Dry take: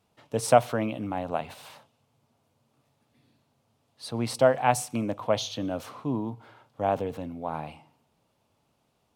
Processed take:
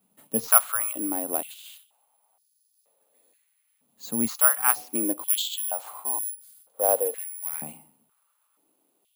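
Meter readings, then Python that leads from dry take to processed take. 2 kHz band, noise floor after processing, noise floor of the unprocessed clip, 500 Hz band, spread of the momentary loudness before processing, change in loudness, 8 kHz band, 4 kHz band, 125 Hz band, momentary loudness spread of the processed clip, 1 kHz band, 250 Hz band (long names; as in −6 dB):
+2.0 dB, −71 dBFS, −72 dBFS, −5.5 dB, 15 LU, +4.5 dB, +13.5 dB, +2.5 dB, −15.5 dB, 15 LU, −3.5 dB, −2.0 dB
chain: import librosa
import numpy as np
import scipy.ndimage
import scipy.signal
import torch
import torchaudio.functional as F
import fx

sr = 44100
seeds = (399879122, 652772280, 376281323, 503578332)

y = (np.kron(scipy.signal.resample_poly(x, 1, 4), np.eye(4)[0]) * 4)[:len(x)]
y = fx.filter_held_highpass(y, sr, hz=2.1, low_hz=200.0, high_hz=5000.0)
y = y * librosa.db_to_amplitude(-5.0)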